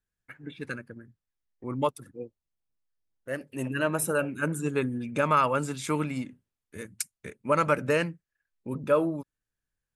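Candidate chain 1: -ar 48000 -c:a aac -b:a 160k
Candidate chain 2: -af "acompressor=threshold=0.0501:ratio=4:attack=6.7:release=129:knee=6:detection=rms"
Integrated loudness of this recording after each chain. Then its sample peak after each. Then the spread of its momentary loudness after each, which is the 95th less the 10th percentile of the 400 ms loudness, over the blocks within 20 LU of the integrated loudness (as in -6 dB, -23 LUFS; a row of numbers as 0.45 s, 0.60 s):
-29.0 LUFS, -34.0 LUFS; -12.0 dBFS, -16.0 dBFS; 19 LU, 15 LU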